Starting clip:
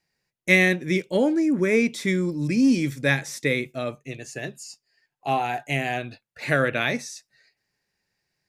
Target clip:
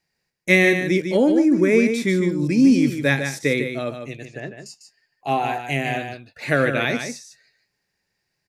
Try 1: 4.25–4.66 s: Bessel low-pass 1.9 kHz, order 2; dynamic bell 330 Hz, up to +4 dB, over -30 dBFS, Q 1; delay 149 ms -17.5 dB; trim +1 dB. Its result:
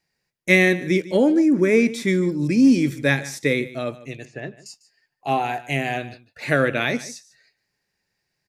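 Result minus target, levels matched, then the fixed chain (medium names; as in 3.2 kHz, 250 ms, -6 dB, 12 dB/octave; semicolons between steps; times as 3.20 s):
echo-to-direct -10 dB
4.25–4.66 s: Bessel low-pass 1.9 kHz, order 2; dynamic bell 330 Hz, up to +4 dB, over -30 dBFS, Q 1; delay 149 ms -7.5 dB; trim +1 dB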